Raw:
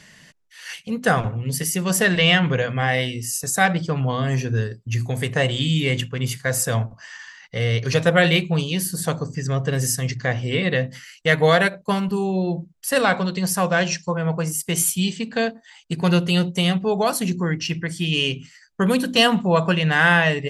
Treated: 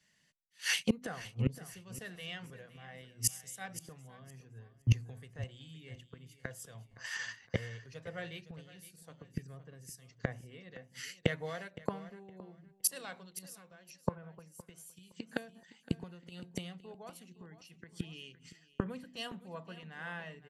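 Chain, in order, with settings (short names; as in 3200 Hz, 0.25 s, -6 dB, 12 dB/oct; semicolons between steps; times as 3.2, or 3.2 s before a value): gate -41 dBFS, range -10 dB; 13.57–16.32 compressor 5:1, threshold -22 dBFS, peak gain reduction 8 dB; flipped gate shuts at -19 dBFS, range -26 dB; feedback echo 0.515 s, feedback 35%, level -12 dB; three-band expander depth 70%; gain -1.5 dB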